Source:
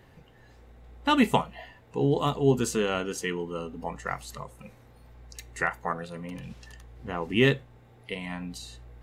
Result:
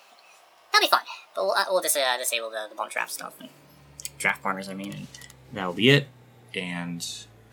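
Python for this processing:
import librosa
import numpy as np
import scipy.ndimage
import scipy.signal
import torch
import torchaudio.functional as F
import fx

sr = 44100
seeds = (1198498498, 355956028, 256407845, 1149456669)

y = fx.speed_glide(x, sr, from_pct=148, to_pct=92)
y = fx.high_shelf(y, sr, hz=2900.0, db=10.0)
y = fx.filter_sweep_highpass(y, sr, from_hz=730.0, to_hz=130.0, start_s=2.68, end_s=3.86, q=1.4)
y = fx.low_shelf(y, sr, hz=65.0, db=-6.0)
y = y * 10.0 ** (1.5 / 20.0)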